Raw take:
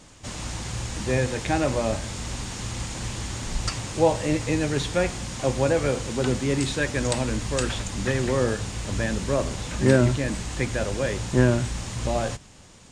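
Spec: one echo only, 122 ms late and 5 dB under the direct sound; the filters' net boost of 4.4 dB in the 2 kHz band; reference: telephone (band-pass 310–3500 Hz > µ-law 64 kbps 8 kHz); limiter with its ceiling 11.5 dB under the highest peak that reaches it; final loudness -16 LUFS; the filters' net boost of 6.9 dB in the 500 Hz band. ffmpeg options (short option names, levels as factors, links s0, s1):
-af "equalizer=f=500:t=o:g=8.5,equalizer=f=2000:t=o:g=5.5,alimiter=limit=0.266:level=0:latency=1,highpass=310,lowpass=3500,aecho=1:1:122:0.562,volume=2.66" -ar 8000 -c:a pcm_mulaw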